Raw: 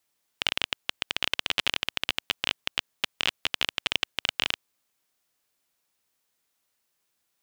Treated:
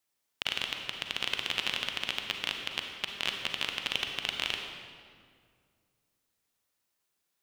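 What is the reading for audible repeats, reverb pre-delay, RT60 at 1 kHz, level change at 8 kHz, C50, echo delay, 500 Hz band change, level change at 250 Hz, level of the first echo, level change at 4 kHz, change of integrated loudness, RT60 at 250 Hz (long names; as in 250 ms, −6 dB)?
no echo audible, 35 ms, 1.9 s, −4.0 dB, 4.0 dB, no echo audible, −3.5 dB, −3.0 dB, no echo audible, −4.0 dB, −4.0 dB, 2.6 s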